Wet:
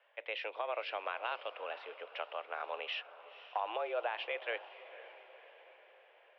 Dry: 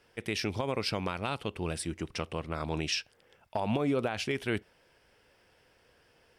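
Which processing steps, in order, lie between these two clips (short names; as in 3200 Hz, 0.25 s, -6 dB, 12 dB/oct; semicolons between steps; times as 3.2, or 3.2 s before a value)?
diffused feedback echo 0.512 s, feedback 55%, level -15 dB; mistuned SSB +110 Hz 420–3100 Hz; gain -3 dB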